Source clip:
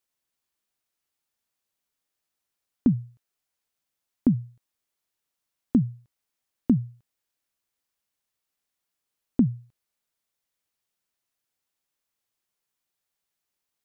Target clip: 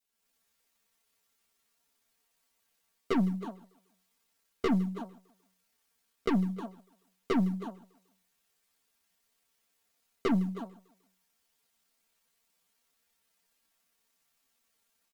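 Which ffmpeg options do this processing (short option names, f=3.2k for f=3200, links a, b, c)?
-filter_complex "[0:a]dynaudnorm=f=120:g=3:m=9dB,adynamicequalizer=threshold=0.0178:dfrequency=770:dqfactor=1.3:tfrequency=770:tqfactor=1.3:attack=5:release=100:ratio=0.375:range=3:mode=cutabove:tftype=bell,aeval=exprs='(tanh(12.6*val(0)+0.25)-tanh(0.25))/12.6':c=same,asplit=2[a][b];[b]adelay=280,highpass=300,lowpass=3.4k,asoftclip=type=hard:threshold=-28.5dB,volume=-7dB[c];[a][c]amix=inputs=2:normalize=0,acrusher=bits=8:mode=log:mix=0:aa=0.000001,acompressor=threshold=-26dB:ratio=8,asplit=2[d][e];[e]aecho=0:1:132|264|396:0.1|0.042|0.0176[f];[d][f]amix=inputs=2:normalize=0,atempo=0.59,aecho=1:1:6.8:0.65,asetrate=68355,aresample=44100"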